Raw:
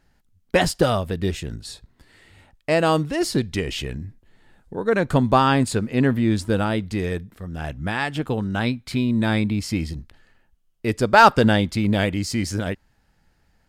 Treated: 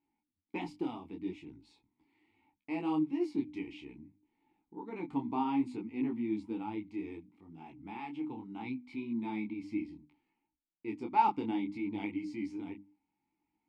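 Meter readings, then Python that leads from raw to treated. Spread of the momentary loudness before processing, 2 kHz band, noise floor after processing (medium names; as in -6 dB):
15 LU, -23.5 dB, under -85 dBFS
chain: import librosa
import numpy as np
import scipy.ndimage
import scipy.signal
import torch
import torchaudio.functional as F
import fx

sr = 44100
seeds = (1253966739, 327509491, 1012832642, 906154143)

y = fx.vowel_filter(x, sr, vowel='u')
y = fx.hum_notches(y, sr, base_hz=50, count=6)
y = fx.detune_double(y, sr, cents=23)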